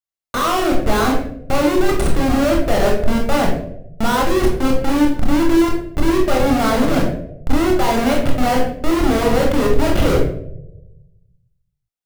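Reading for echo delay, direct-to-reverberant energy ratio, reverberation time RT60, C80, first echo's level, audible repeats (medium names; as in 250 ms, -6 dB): no echo, -0.5 dB, 0.85 s, 7.5 dB, no echo, no echo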